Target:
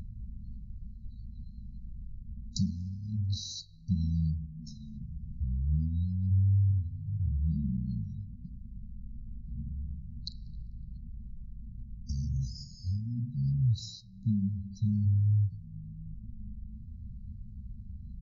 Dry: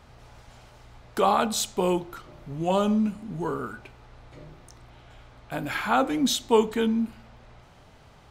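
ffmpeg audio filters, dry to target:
ffmpeg -i in.wav -filter_complex "[0:a]acompressor=mode=upward:threshold=-29dB:ratio=2.5,highshelf=frequency=3500:width_type=q:width=1.5:gain=6,asplit=2[link_01][link_02];[link_02]asplit=3[link_03][link_04][link_05];[link_03]adelay=313,afreqshift=120,volume=-22dB[link_06];[link_04]adelay=626,afreqshift=240,volume=-29.5dB[link_07];[link_05]adelay=939,afreqshift=360,volume=-37.1dB[link_08];[link_06][link_07][link_08]amix=inputs=3:normalize=0[link_09];[link_01][link_09]amix=inputs=2:normalize=0,acompressor=threshold=-25dB:ratio=20,afftfilt=real='re*(1-between(b*sr/4096,530,8400))':imag='im*(1-between(b*sr/4096,530,8400))':win_size=4096:overlap=0.75,afftdn=noise_reduction=34:noise_floor=-47,asetrate=20110,aresample=44100,equalizer=frequency=84:width=1.2:gain=6.5,volume=-2dB" out.wav

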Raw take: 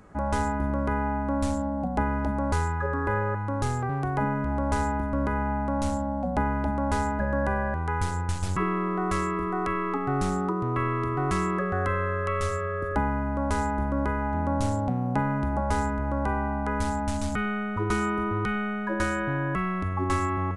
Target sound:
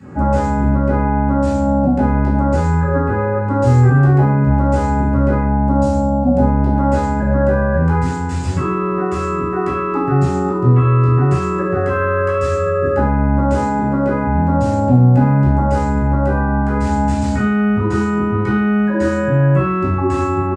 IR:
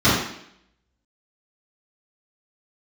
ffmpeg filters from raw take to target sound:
-filter_complex "[0:a]asettb=1/sr,asplit=3[link_01][link_02][link_03];[link_01]atrim=end=5.414[link_04];[link_02]atrim=start=5.41:end=6.73,asetpts=PTS-STARTPTS,afade=type=in:duration=0.004:curve=qsin,afade=type=out:start_time=1.316:duration=0.004:curve=qsin,equalizer=frequency=2000:width_type=o:width=1.5:gain=-8.5[link_05];[link_03]atrim=start=6.726[link_06];[link_04][link_05]acrossfade=duration=0.004:curve1=hsin:curve2=qsin[link_07];[link_07][link_06]acrossfade=duration=0.004:curve1=qsin:curve2=hsin,asettb=1/sr,asplit=3[link_08][link_09][link_10];[link_08]atrim=end=13.584[link_11];[link_09]atrim=start=13.58:end=14.24,asetpts=PTS-STARTPTS,afade=type=in:duration=0.004:curve=qsin,afade=type=out:start_time=0.656:duration=0.004:curve=qsin,highpass=150[link_12];[link_10]atrim=start=14.236[link_13];[link_11][link_12]acrossfade=duration=0.004:curve1=hsin:curve2=qsin[link_14];[link_14][link_13]acrossfade=duration=0.004:curve1=qsin:curve2=hsin,alimiter=limit=-23.5dB:level=0:latency=1:release=188,asplit=2[link_15][link_16];[link_16]adelay=16,volume=-6.5dB[link_17];[link_15][link_17]amix=inputs=2:normalize=0[link_18];[1:a]atrim=start_sample=2205,asetrate=57330,aresample=44100[link_19];[link_18][link_19]afir=irnorm=-1:irlink=0,volume=-9dB"

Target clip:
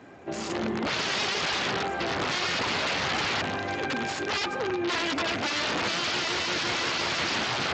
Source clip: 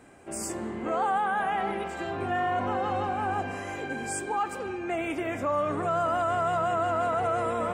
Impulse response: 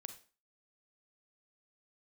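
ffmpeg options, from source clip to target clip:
-filter_complex "[0:a]aeval=exprs='0.158*(cos(1*acos(clip(val(0)/0.158,-1,1)))-cos(1*PI/2))+0.00158*(cos(4*acos(clip(val(0)/0.158,-1,1)))-cos(4*PI/2))':channel_layout=same,aeval=exprs='(mod(22.4*val(0)+1,2)-1)/22.4':channel_layout=same,asplit=2[link_01][link_02];[1:a]atrim=start_sample=2205,asetrate=61740,aresample=44100[link_03];[link_02][link_03]afir=irnorm=-1:irlink=0,volume=-6.5dB[link_04];[link_01][link_04]amix=inputs=2:normalize=0,volume=4dB" -ar 16000 -c:a libspeex -b:a 21k

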